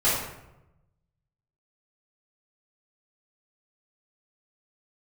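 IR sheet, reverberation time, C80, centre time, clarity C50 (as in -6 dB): 0.90 s, 4.0 dB, 62 ms, 0.5 dB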